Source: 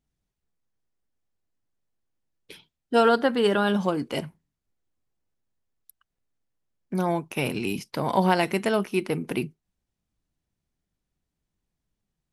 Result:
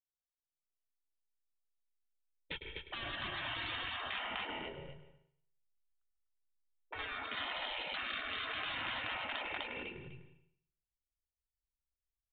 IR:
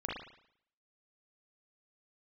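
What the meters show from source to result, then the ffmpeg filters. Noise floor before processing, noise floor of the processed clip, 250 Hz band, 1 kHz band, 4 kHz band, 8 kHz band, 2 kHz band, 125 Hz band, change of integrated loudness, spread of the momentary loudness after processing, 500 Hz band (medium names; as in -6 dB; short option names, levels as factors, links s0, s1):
-84 dBFS, under -85 dBFS, -26.0 dB, -15.0 dB, -3.5 dB, under -35 dB, -6.5 dB, -21.0 dB, -14.5 dB, 11 LU, -24.0 dB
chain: -filter_complex "[0:a]agate=range=0.00447:threshold=0.00631:ratio=16:detection=peak,acompressor=threshold=0.0501:ratio=8,aecho=1:1:250|500|750:0.422|0.0843|0.0169,asubboost=boost=11:cutoff=90,asoftclip=type=hard:threshold=0.0473,aecho=1:1:2.2:0.57,aresample=8000,aresample=44100,alimiter=level_in=1.78:limit=0.0631:level=0:latency=1:release=21,volume=0.562,asplit=2[s0][s1];[1:a]atrim=start_sample=2205,adelay=104[s2];[s1][s2]afir=irnorm=-1:irlink=0,volume=0.282[s3];[s0][s3]amix=inputs=2:normalize=0,afftfilt=real='re*lt(hypot(re,im),0.0141)':imag='im*lt(hypot(re,im),0.0141)':win_size=1024:overlap=0.75,volume=3.76"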